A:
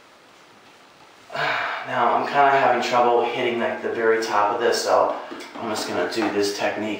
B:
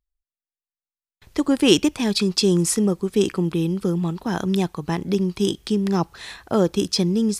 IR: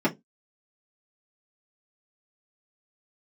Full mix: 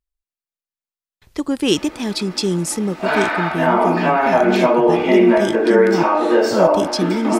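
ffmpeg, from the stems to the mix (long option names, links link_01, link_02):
-filter_complex "[0:a]highpass=240,acompressor=threshold=-31dB:ratio=2,adelay=1700,volume=0.5dB,asplit=2[link_01][link_02];[link_02]volume=-4dB[link_03];[1:a]volume=-1.5dB[link_04];[2:a]atrim=start_sample=2205[link_05];[link_03][link_05]afir=irnorm=-1:irlink=0[link_06];[link_01][link_04][link_06]amix=inputs=3:normalize=0"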